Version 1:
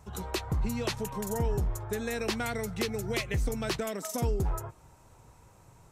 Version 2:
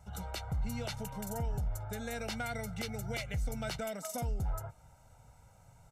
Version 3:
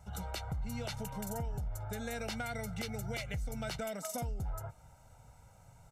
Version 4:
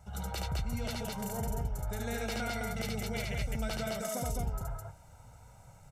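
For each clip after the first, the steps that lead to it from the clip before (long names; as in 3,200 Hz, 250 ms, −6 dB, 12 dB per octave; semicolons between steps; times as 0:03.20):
comb filter 1.4 ms, depth 74%; brickwall limiter −21.5 dBFS, peak gain reduction 5 dB; level −6 dB
downward compressor, threshold −35 dBFS, peak gain reduction 5.5 dB; level +1 dB
loudspeakers that aren't time-aligned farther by 25 metres −2 dB, 72 metres −2 dB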